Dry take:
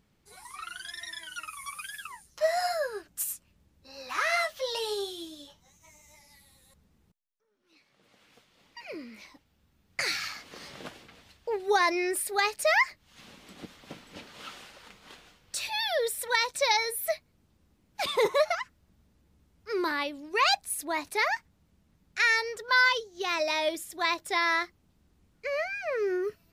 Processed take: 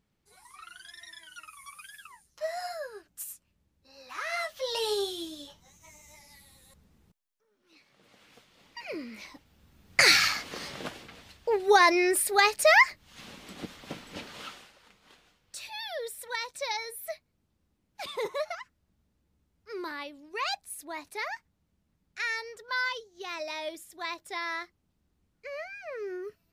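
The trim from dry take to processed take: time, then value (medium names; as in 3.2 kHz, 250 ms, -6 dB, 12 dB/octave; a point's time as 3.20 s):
4.24 s -7.5 dB
4.87 s +3 dB
9.07 s +3 dB
10.16 s +11.5 dB
10.77 s +4.5 dB
14.35 s +4.5 dB
14.75 s -8 dB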